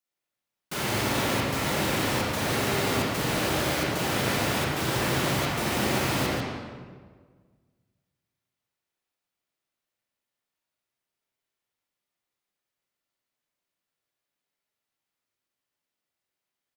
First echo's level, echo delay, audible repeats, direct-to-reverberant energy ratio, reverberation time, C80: −5.5 dB, 142 ms, 1, −6.5 dB, 1.6 s, −1.0 dB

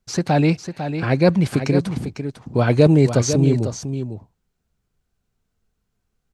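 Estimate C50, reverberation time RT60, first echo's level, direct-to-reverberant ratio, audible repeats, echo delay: no reverb audible, no reverb audible, −9.0 dB, no reverb audible, 1, 500 ms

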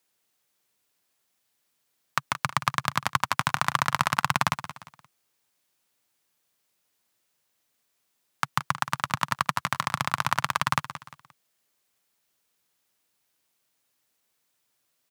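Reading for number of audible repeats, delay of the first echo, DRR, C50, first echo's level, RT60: 3, 175 ms, no reverb audible, no reverb audible, −13.0 dB, no reverb audible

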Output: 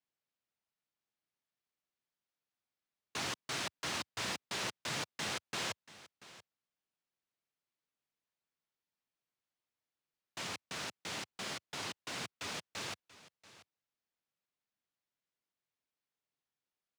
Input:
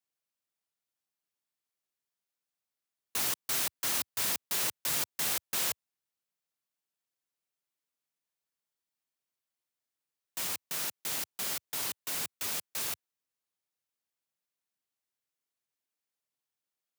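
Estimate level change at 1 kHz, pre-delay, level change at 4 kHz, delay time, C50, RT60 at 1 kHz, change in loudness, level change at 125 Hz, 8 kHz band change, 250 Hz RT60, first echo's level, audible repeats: −0.5 dB, no reverb audible, −3.5 dB, 685 ms, no reverb audible, no reverb audible, −8.5 dB, +2.0 dB, −10.5 dB, no reverb audible, −18.0 dB, 1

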